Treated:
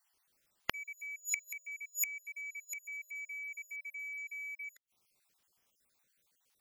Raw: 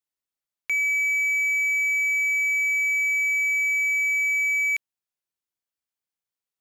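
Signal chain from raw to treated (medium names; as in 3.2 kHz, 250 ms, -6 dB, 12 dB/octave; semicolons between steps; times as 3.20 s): random holes in the spectrogram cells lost 42%; inverted gate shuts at -32 dBFS, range -36 dB; trim +16.5 dB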